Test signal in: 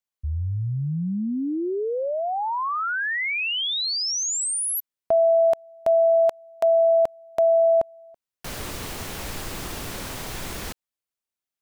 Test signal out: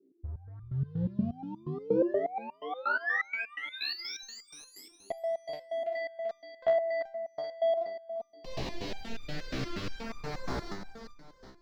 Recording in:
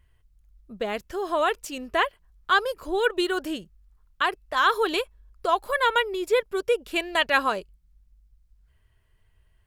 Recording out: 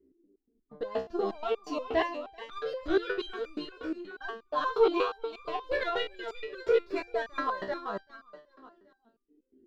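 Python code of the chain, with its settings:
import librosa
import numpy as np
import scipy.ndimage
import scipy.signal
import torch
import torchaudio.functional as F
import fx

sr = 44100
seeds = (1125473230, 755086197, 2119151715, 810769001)

p1 = fx.noise_reduce_blind(x, sr, reduce_db=9)
p2 = fx.band_shelf(p1, sr, hz=5600.0, db=8.0, octaves=1.1)
p3 = fx.leveller(p2, sr, passes=3)
p4 = fx.filter_lfo_notch(p3, sr, shape='saw_down', hz=0.3, low_hz=720.0, high_hz=3500.0, q=1.2)
p5 = fx.dmg_noise_band(p4, sr, seeds[0], low_hz=230.0, high_hz=410.0, level_db=-55.0)
p6 = fx.air_absorb(p5, sr, metres=320.0)
p7 = p6 + fx.echo_feedback(p6, sr, ms=388, feedback_pct=33, wet_db=-7, dry=0)
y = fx.resonator_held(p7, sr, hz=8.4, low_hz=65.0, high_hz=1200.0)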